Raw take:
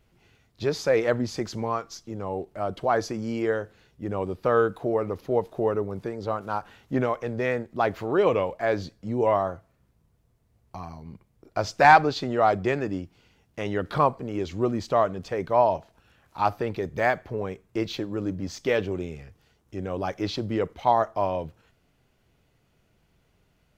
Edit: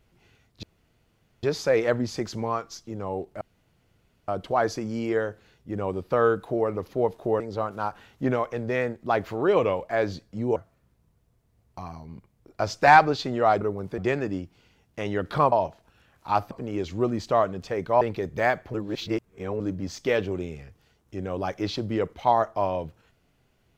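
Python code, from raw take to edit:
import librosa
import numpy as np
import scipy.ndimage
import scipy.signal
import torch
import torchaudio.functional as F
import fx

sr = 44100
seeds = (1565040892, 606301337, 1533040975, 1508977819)

y = fx.edit(x, sr, fx.insert_room_tone(at_s=0.63, length_s=0.8),
    fx.insert_room_tone(at_s=2.61, length_s=0.87),
    fx.move(start_s=5.73, length_s=0.37, to_s=12.58),
    fx.cut(start_s=9.26, length_s=0.27),
    fx.move(start_s=15.62, length_s=0.99, to_s=14.12),
    fx.reverse_span(start_s=17.34, length_s=0.86), tone=tone)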